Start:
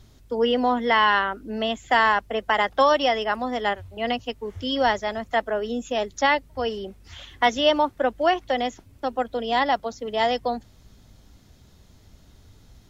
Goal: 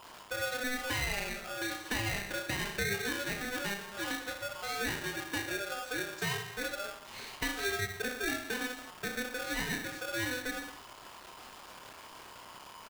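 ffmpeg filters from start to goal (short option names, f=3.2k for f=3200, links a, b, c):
-af "aeval=exprs='val(0)+0.5*0.0211*sgn(val(0))':c=same,bass=f=250:g=-10,treble=f=4k:g=-12,aecho=1:1:30|66|109.2|161|223.2:0.631|0.398|0.251|0.158|0.1,acompressor=threshold=-28dB:ratio=2.5,aeval=exprs='val(0)*sgn(sin(2*PI*1000*n/s))':c=same,volume=-7.5dB"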